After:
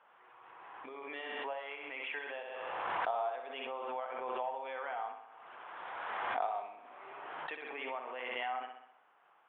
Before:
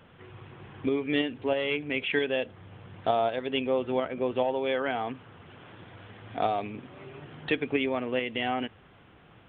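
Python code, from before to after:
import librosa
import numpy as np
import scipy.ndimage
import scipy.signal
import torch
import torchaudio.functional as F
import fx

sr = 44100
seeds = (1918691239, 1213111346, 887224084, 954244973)

p1 = fx.ladder_bandpass(x, sr, hz=1100.0, resonance_pct=40)
p2 = p1 + fx.echo_feedback(p1, sr, ms=64, feedback_pct=55, wet_db=-7.0, dry=0)
p3 = fx.pre_swell(p2, sr, db_per_s=21.0)
y = p3 * librosa.db_to_amplitude(1.5)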